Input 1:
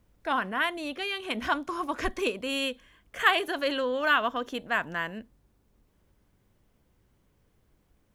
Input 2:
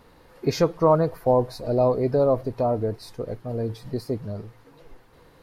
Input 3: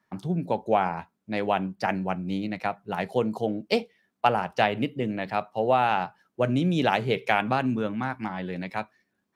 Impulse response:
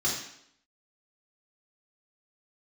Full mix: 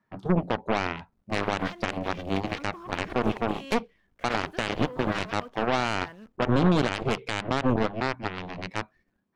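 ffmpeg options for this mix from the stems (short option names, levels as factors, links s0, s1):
-filter_complex "[0:a]asoftclip=type=hard:threshold=0.15,acrusher=bits=8:dc=4:mix=0:aa=0.000001,adelay=1050,volume=0.335[s0];[2:a]volume=0.891[s1];[s0][s1]amix=inputs=2:normalize=0,lowpass=f=2100:p=1,alimiter=limit=0.119:level=0:latency=1:release=75,volume=1,lowshelf=f=200:g=5.5,aeval=exprs='0.178*(cos(1*acos(clip(val(0)/0.178,-1,1)))-cos(1*PI/2))+0.0794*(cos(2*acos(clip(val(0)/0.178,-1,1)))-cos(2*PI/2))+0.0178*(cos(5*acos(clip(val(0)/0.178,-1,1)))-cos(5*PI/2))+0.0631*(cos(7*acos(clip(val(0)/0.178,-1,1)))-cos(7*PI/2))':c=same"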